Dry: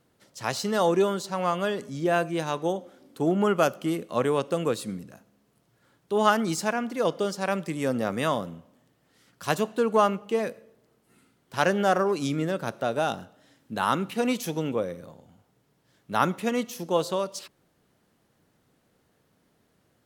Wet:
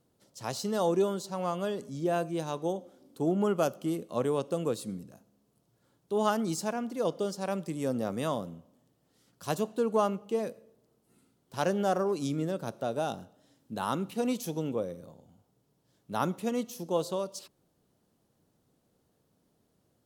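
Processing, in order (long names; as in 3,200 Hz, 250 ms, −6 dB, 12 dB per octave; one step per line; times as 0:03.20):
parametric band 1,900 Hz −9.5 dB 1.5 octaves
level −3.5 dB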